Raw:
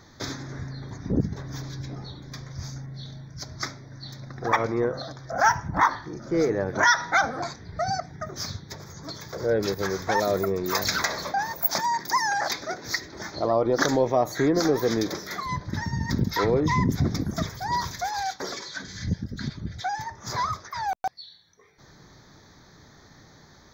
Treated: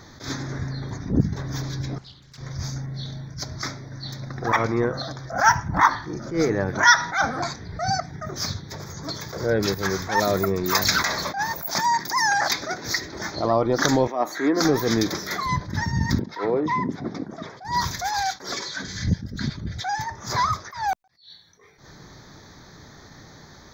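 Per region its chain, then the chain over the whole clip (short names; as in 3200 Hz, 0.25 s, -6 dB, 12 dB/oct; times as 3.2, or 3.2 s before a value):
1.98–2.38 passive tone stack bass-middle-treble 5-5-5 + Doppler distortion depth 0.46 ms
14.07–14.61 ladder high-pass 210 Hz, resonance 35% + bell 1300 Hz +8.5 dB 2.6 oct
16.19–17.65 BPF 550–4300 Hz + tilt shelf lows +10 dB, about 790 Hz
whole clip: dynamic EQ 500 Hz, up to -6 dB, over -38 dBFS, Q 1.3; attack slew limiter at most 140 dB/s; gain +6 dB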